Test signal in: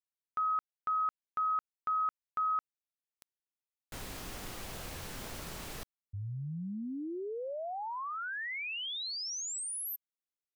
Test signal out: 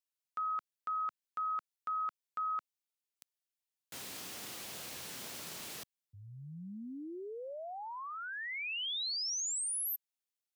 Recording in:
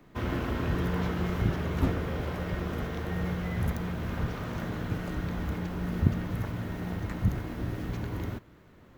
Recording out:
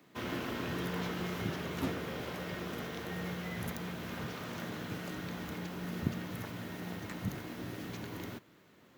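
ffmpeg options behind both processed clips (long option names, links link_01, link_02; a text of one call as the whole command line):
ffmpeg -i in.wav -filter_complex "[0:a]highpass=160,acrossover=split=2400[link_01][link_02];[link_02]acontrast=86[link_03];[link_01][link_03]amix=inputs=2:normalize=0,volume=-5dB" out.wav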